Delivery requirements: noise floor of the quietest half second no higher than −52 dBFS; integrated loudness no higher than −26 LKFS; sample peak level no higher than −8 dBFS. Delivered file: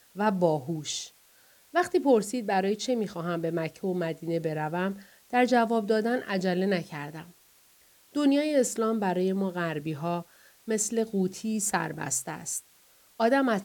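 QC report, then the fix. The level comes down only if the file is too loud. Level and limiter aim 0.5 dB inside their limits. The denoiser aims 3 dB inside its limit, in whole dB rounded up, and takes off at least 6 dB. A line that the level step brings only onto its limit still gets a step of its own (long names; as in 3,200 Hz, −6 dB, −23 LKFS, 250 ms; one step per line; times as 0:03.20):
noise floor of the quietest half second −60 dBFS: in spec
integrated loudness −28.0 LKFS: in spec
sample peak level −10.5 dBFS: in spec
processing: no processing needed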